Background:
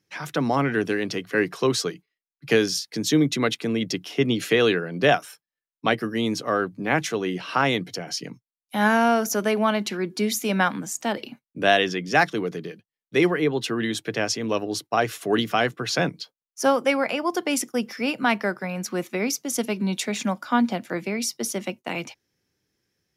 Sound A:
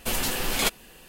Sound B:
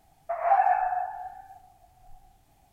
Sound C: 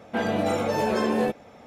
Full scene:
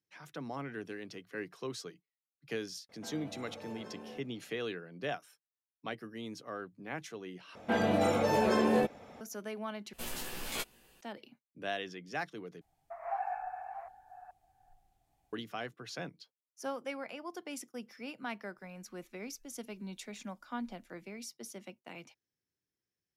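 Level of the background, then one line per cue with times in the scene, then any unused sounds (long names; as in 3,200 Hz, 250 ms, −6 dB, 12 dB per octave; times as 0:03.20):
background −18.5 dB
0:02.89: mix in C −17 dB + downward compressor, threshold −27 dBFS
0:07.55: overwrite with C −3.5 dB
0:09.93: overwrite with A −15 dB + double-tracking delay 17 ms −3 dB
0:12.61: overwrite with B −14.5 dB + delay that plays each chunk backwards 425 ms, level −9 dB
0:18.57: mix in B −13 dB + inverse Chebyshev band-stop filter 190–930 Hz, stop band 80 dB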